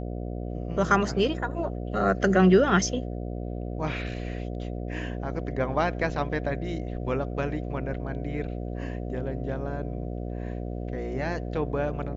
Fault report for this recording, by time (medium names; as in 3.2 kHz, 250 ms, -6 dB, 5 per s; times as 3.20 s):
buzz 60 Hz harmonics 12 -33 dBFS